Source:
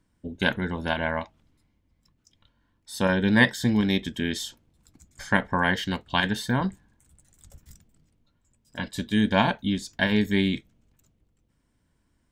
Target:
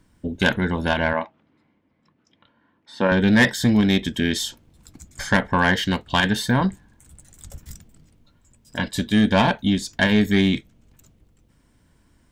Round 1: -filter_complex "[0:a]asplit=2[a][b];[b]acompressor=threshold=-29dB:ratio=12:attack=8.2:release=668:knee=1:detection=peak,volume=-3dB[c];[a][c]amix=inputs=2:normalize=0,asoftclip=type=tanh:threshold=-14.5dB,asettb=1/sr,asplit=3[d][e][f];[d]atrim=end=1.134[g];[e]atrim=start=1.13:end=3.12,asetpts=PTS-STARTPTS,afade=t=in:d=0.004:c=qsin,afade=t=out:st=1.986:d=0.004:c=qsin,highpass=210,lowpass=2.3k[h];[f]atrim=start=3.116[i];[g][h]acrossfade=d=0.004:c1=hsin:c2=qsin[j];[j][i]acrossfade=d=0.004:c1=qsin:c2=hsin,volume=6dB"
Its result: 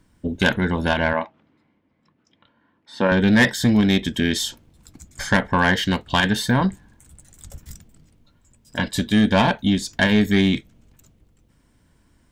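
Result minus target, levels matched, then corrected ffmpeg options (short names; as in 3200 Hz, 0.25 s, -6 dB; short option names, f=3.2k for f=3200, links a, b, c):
compressor: peak gain reduction -9 dB
-filter_complex "[0:a]asplit=2[a][b];[b]acompressor=threshold=-39dB:ratio=12:attack=8.2:release=668:knee=1:detection=peak,volume=-3dB[c];[a][c]amix=inputs=2:normalize=0,asoftclip=type=tanh:threshold=-14.5dB,asettb=1/sr,asplit=3[d][e][f];[d]atrim=end=1.134[g];[e]atrim=start=1.13:end=3.12,asetpts=PTS-STARTPTS,afade=t=in:d=0.004:c=qsin,afade=t=out:st=1.986:d=0.004:c=qsin,highpass=210,lowpass=2.3k[h];[f]atrim=start=3.116[i];[g][h]acrossfade=d=0.004:c1=hsin:c2=qsin[j];[j][i]acrossfade=d=0.004:c1=qsin:c2=hsin,volume=6dB"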